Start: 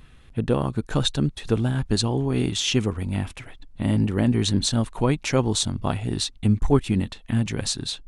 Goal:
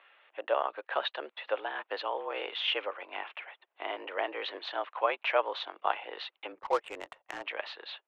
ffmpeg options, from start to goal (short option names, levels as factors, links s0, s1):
-filter_complex "[0:a]highpass=f=520:t=q:w=0.5412,highpass=f=520:t=q:w=1.307,lowpass=f=3000:t=q:w=0.5176,lowpass=f=3000:t=q:w=0.7071,lowpass=f=3000:t=q:w=1.932,afreqshift=82,asettb=1/sr,asplit=3[s0][s1][s2];[s0]atrim=end=6.524[s3];[s1]atrim=start=6.52:end=7.44,asetpts=PTS-STARTPTS,afade=t=in:d=0.004:c=qsin,afade=t=out:st=0.916:d=0.004:c=qsin,adynamicsmooth=sensitivity=5.5:basefreq=780[s4];[s2]atrim=start=7.436[s5];[s3][s4]acrossfade=d=0.004:c1=hsin:c2=qsin[s6];[s6][s5]acrossfade=d=0.004:c1=qsin:c2=hsin"